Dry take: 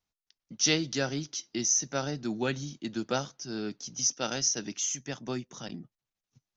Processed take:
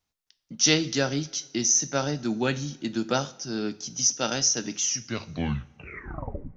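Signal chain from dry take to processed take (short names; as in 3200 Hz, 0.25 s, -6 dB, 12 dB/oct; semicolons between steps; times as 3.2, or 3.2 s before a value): tape stop at the end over 1.77 s; two-slope reverb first 0.43 s, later 1.6 s, from -16 dB, DRR 12.5 dB; gain +4.5 dB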